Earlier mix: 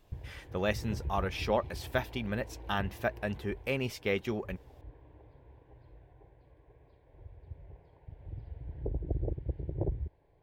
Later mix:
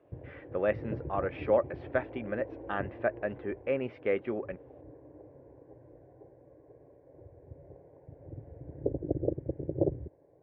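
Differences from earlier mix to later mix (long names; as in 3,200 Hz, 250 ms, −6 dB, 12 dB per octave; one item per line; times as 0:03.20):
background: add tilt shelving filter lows +9 dB, about 1,100 Hz
master: add loudspeaker in its box 180–2,100 Hz, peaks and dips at 190 Hz −5 dB, 300 Hz +3 dB, 550 Hz +7 dB, 910 Hz −5 dB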